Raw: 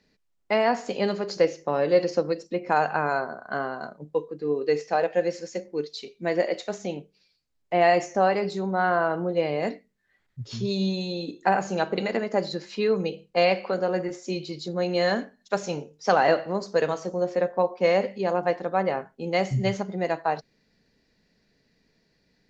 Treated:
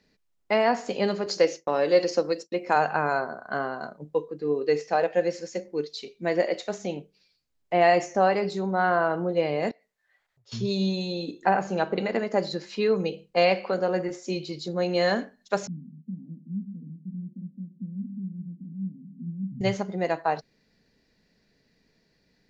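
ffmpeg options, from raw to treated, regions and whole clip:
-filter_complex "[0:a]asettb=1/sr,asplit=3[s0][s1][s2];[s0]atrim=end=1.264[s3];[s1]atrim=start=1.26:end=2.76,asetpts=PTS-STARTPTS,afade=t=in:d=0.004:c=qsin,afade=t=out:st=1.496:d=0.004:c=qsin,highpass=210,agate=range=0.0224:threshold=0.00891:ratio=3:release=100:detection=peak,highshelf=f=3900:g=8[s4];[s2]atrim=start=2.756[s5];[s3][s4]acrossfade=d=0.004:c1=hsin:c2=qsin[s6];[s6][s5]acrossfade=d=0.004:c1=qsin:c2=hsin,asettb=1/sr,asplit=3[s7][s8][s9];[s7]atrim=end=9.714[s10];[s8]atrim=start=9.71:end=10.52,asetpts=PTS-STARTPTS,afade=t=in:d=0.004:c=qsin,afade=t=out:st=0.806:d=0.004:c=qsin,acompressor=threshold=0.00355:ratio=10:attack=3.2:release=140:knee=1:detection=peak,lowshelf=f=420:t=q:w=1.5:g=-14[s11];[s9]atrim=start=10.516[s12];[s10][s11]acrossfade=d=0.004:c1=hsin:c2=qsin[s13];[s13][s12]acrossfade=d=0.004:c1=qsin:c2=hsin,asettb=1/sr,asplit=3[s14][s15][s16];[s14]atrim=end=11.434[s17];[s15]atrim=start=11.43:end=12.16,asetpts=PTS-STARTPTS,afade=t=in:d=0.004:c=qsin,afade=t=out:st=0.726:d=0.004:c=qsin,highshelf=f=4700:g=-10,acompressor=mode=upward:threshold=0.01:ratio=2.5:attack=3.2:release=140:knee=2.83:detection=peak[s18];[s16]atrim=start=12.156[s19];[s17][s18]acrossfade=d=0.004:c1=hsin:c2=qsin[s20];[s20][s19]acrossfade=d=0.004:c1=qsin:c2=hsin,asettb=1/sr,asplit=3[s21][s22][s23];[s21]atrim=end=15.674[s24];[s22]atrim=start=15.67:end=19.61,asetpts=PTS-STARTPTS,afade=t=in:d=0.004:c=qsin,afade=t=out:st=3.936:d=0.004:c=qsin,aeval=exprs='val(0)+0.5*0.0266*sgn(val(0))':c=same,asuperpass=centerf=200:order=8:qfactor=2.1[s25];[s23]atrim=start=19.606[s26];[s24][s25]acrossfade=d=0.004:c1=hsin:c2=qsin[s27];[s27][s26]acrossfade=d=0.004:c1=qsin:c2=hsin"

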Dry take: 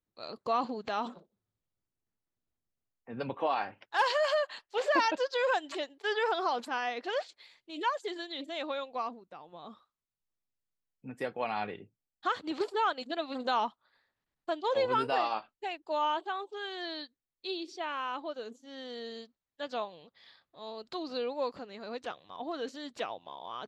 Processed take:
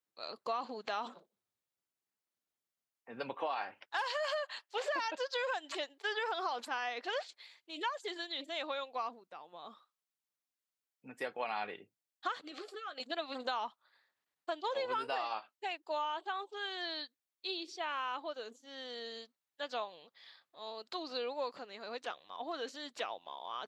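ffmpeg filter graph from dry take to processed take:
-filter_complex "[0:a]asettb=1/sr,asplit=3[s0][s1][s2];[s0]atrim=end=12.444[s3];[s1]atrim=start=12.44:end=13,asetpts=PTS-STARTPTS,afade=t=in:d=0.004:c=qsin,afade=t=out:st=0.556:d=0.004:c=qsin,acompressor=threshold=0.0126:ratio=10:attack=3.2:release=140:knee=1:detection=peak,asuperstop=centerf=940:order=20:qfactor=4.3,asplit=2[s4][s5];[s5]adelay=14,volume=0.299[s6];[s4][s6]amix=inputs=2:normalize=0,atrim=end_sample=24696[s7];[s2]atrim=start=12.996[s8];[s3][s7]acrossfade=d=0.004:c1=hsin:c2=qsin[s9];[s9][s8]acrossfade=d=0.004:c1=qsin:c2=hsin,highpass=f=710:p=1,acompressor=threshold=0.0224:ratio=10,volume=1.12"

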